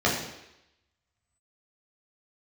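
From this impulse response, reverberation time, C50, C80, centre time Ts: 0.85 s, 4.5 dB, 7.0 dB, 42 ms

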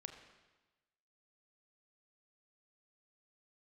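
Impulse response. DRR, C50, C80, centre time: 5.5 dB, 7.5 dB, 8.5 dB, 25 ms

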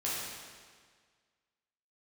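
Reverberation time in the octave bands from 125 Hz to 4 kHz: 1.7, 1.7, 1.7, 1.7, 1.7, 1.6 s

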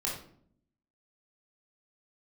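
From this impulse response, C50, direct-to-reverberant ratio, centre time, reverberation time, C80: 3.5 dB, -4.0 dB, 38 ms, 0.60 s, 8.5 dB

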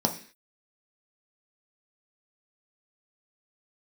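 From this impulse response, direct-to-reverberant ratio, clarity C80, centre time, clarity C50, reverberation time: 3.0 dB, 16.5 dB, 11 ms, 12.0 dB, 0.45 s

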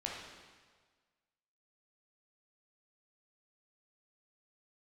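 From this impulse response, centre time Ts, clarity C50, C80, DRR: 75 ms, 0.5 dB, 3.0 dB, -3.0 dB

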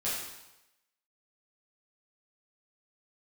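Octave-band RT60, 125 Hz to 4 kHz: 0.90, 0.85, 0.95, 0.95, 0.90, 0.90 s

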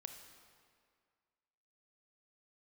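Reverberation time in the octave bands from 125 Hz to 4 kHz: 1.9, 2.0, 2.0, 2.1, 1.9, 1.6 s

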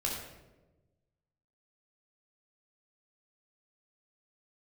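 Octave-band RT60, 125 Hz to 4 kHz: 1.7, 1.4, 1.3, 0.90, 0.80, 0.65 s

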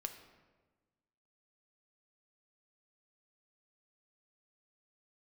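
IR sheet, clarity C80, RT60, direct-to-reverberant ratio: 10.5 dB, 1.3 s, 6.0 dB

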